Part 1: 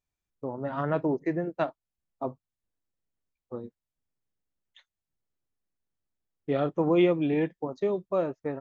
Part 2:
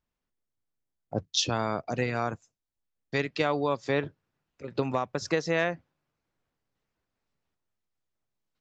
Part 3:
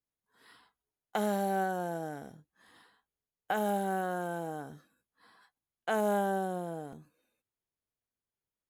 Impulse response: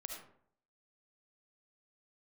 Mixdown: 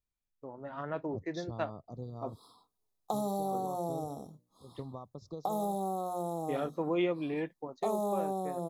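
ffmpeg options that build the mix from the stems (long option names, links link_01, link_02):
-filter_complex "[0:a]lowshelf=frequency=400:gain=-6,dynaudnorm=framelen=190:gausssize=11:maxgain=3.5dB,volume=-8.5dB[link_01];[1:a]aemphasis=mode=reproduction:type=bsi,volume=-18dB[link_02];[2:a]bandreject=frequency=60:width_type=h:width=6,bandreject=frequency=120:width_type=h:width=6,bandreject=frequency=180:width_type=h:width=6,bandreject=frequency=240:width_type=h:width=6,bandreject=frequency=300:width_type=h:width=6,bandreject=frequency=360:width_type=h:width=6,bandreject=frequency=420:width_type=h:width=6,bandreject=frequency=480:width_type=h:width=6,bandreject=frequency=540:width_type=h:width=6,bandreject=frequency=600:width_type=h:width=6,adelay=1950,volume=2.5dB[link_03];[link_02][link_03]amix=inputs=2:normalize=0,asuperstop=centerf=2100:order=20:qfactor=0.97,acompressor=threshold=-30dB:ratio=6,volume=0dB[link_04];[link_01][link_04]amix=inputs=2:normalize=0"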